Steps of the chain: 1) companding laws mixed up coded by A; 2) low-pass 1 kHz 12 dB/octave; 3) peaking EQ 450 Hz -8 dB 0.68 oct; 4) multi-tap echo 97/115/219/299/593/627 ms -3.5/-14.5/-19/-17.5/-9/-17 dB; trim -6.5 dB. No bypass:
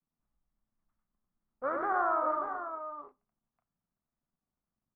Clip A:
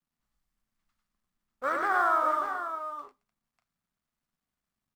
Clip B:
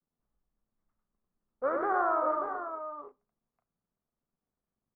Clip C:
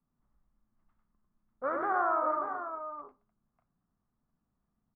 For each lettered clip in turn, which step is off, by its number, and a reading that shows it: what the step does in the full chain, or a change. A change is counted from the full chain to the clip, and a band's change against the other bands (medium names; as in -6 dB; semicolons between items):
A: 2, 2 kHz band +7.5 dB; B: 3, 2 kHz band -3.0 dB; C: 1, distortion -29 dB